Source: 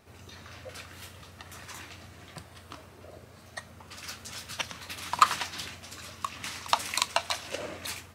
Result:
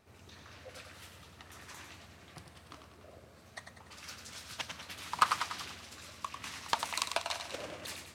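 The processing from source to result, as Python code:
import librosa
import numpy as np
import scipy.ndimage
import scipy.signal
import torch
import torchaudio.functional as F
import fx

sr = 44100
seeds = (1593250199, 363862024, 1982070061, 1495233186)

y = fx.echo_feedback(x, sr, ms=97, feedback_pct=51, wet_db=-7.0)
y = fx.doppler_dist(y, sr, depth_ms=0.31)
y = y * librosa.db_to_amplitude(-6.5)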